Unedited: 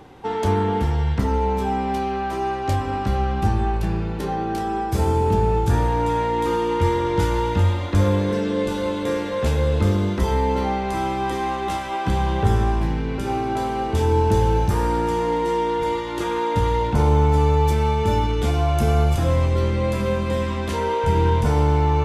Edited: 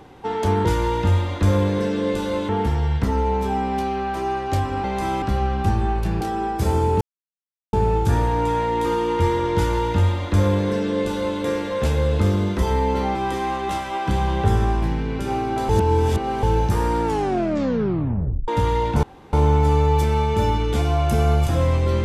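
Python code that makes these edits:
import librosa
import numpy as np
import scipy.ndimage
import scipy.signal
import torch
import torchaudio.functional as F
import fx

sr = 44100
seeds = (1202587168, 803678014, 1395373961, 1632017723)

y = fx.edit(x, sr, fx.cut(start_s=3.99, length_s=0.55),
    fx.insert_silence(at_s=5.34, length_s=0.72),
    fx.duplicate(start_s=7.17, length_s=1.84, to_s=0.65),
    fx.move(start_s=10.76, length_s=0.38, to_s=3.0),
    fx.reverse_span(start_s=13.68, length_s=0.74),
    fx.tape_stop(start_s=15.02, length_s=1.45),
    fx.insert_room_tone(at_s=17.02, length_s=0.3), tone=tone)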